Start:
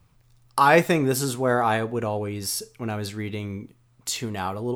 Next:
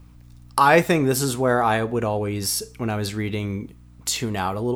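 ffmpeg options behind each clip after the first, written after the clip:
-filter_complex "[0:a]asplit=2[a][b];[b]acompressor=threshold=-30dB:ratio=6,volume=0dB[c];[a][c]amix=inputs=2:normalize=0,aeval=exprs='val(0)+0.00447*(sin(2*PI*60*n/s)+sin(2*PI*2*60*n/s)/2+sin(2*PI*3*60*n/s)/3+sin(2*PI*4*60*n/s)/4+sin(2*PI*5*60*n/s)/5)':c=same"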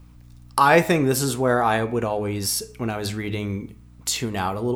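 -af "bandreject=f=106.6:t=h:w=4,bandreject=f=213.2:t=h:w=4,bandreject=f=319.8:t=h:w=4,bandreject=f=426.4:t=h:w=4,bandreject=f=533:t=h:w=4,bandreject=f=639.6:t=h:w=4,bandreject=f=746.2:t=h:w=4,bandreject=f=852.8:t=h:w=4,bandreject=f=959.4:t=h:w=4,bandreject=f=1.066k:t=h:w=4,bandreject=f=1.1726k:t=h:w=4,bandreject=f=1.2792k:t=h:w=4,bandreject=f=1.3858k:t=h:w=4,bandreject=f=1.4924k:t=h:w=4,bandreject=f=1.599k:t=h:w=4,bandreject=f=1.7056k:t=h:w=4,bandreject=f=1.8122k:t=h:w=4,bandreject=f=1.9188k:t=h:w=4,bandreject=f=2.0254k:t=h:w=4,bandreject=f=2.132k:t=h:w=4,bandreject=f=2.2386k:t=h:w=4,bandreject=f=2.3452k:t=h:w=4,bandreject=f=2.4518k:t=h:w=4,bandreject=f=2.5584k:t=h:w=4,bandreject=f=2.665k:t=h:w=4,bandreject=f=2.7716k:t=h:w=4"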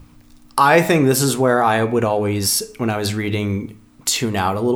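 -filter_complex "[0:a]bandreject=f=60:t=h:w=6,bandreject=f=120:t=h:w=6,bandreject=f=180:t=h:w=6,asplit=2[a][b];[b]alimiter=limit=-13.5dB:level=0:latency=1,volume=2.5dB[c];[a][c]amix=inputs=2:normalize=0,volume=-1dB"

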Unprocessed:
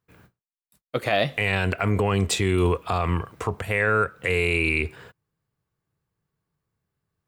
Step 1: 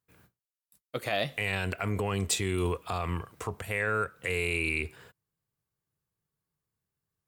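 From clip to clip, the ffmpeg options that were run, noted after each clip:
-af "aemphasis=mode=production:type=cd,volume=-8dB"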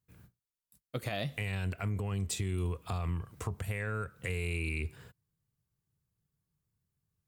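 -af "bass=f=250:g=12,treble=f=4k:g=3,acompressor=threshold=-27dB:ratio=4,volume=-4.5dB"

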